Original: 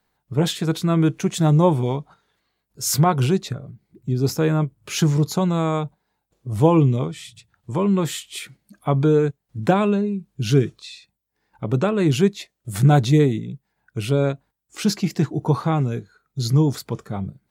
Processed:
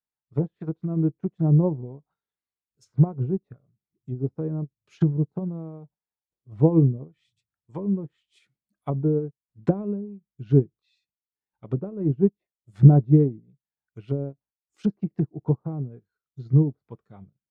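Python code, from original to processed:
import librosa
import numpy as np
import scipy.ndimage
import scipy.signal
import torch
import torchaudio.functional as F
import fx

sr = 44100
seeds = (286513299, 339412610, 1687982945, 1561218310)

y = fx.env_lowpass_down(x, sr, base_hz=440.0, full_db=-17.0)
y = fx.upward_expand(y, sr, threshold_db=-33.0, expansion=2.5)
y = y * 10.0 ** (5.0 / 20.0)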